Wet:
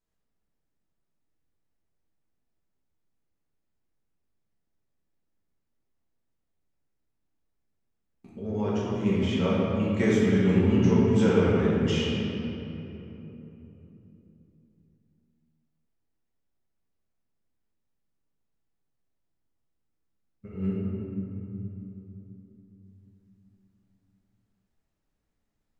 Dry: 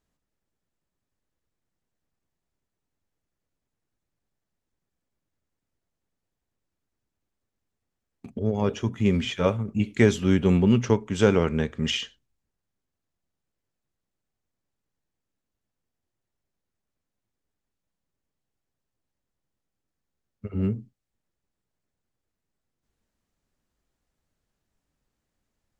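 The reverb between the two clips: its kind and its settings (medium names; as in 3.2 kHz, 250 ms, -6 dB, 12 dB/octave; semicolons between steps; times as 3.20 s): simulated room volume 180 m³, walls hard, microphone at 1.1 m; trim -10.5 dB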